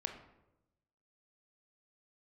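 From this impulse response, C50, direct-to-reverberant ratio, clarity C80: 8.0 dB, 4.5 dB, 10.5 dB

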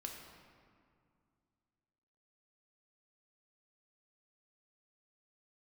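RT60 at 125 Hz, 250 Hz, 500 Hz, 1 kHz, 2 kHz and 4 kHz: 2.9, 2.8, 2.2, 2.2, 1.8, 1.3 s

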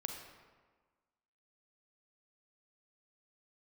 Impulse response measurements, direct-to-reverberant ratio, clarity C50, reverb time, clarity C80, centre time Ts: 3.0 dB, 4.0 dB, 1.4 s, 6.0 dB, 43 ms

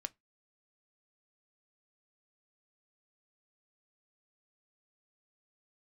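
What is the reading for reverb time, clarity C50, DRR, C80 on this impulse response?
0.20 s, 29.5 dB, 10.0 dB, 39.5 dB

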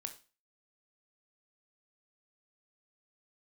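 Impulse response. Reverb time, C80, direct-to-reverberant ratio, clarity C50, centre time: 0.35 s, 18.0 dB, 6.5 dB, 12.5 dB, 8 ms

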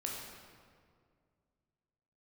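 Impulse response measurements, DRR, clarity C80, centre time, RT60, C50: -2.0 dB, 2.5 dB, 85 ms, 2.1 s, 1.0 dB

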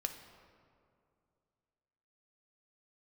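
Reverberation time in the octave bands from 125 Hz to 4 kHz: 2.9, 2.7, 2.6, 2.3, 1.7, 1.2 s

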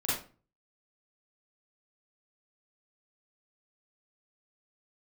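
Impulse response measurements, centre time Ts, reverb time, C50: 56 ms, 0.35 s, 0.5 dB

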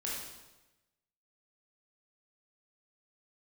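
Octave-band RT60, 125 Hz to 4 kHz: 1.2, 1.1, 1.1, 1.0, 1.0, 0.95 s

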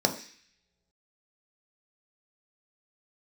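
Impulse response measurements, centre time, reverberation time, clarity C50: 12 ms, not exponential, 11.5 dB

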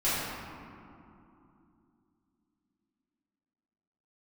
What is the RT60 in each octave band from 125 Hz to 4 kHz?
3.4, 4.0, 3.1, 2.8, 2.0, 1.2 s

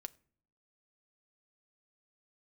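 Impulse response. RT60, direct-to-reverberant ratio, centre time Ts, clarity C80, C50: not exponential, 9.5 dB, 2 ms, 27.0 dB, 24.0 dB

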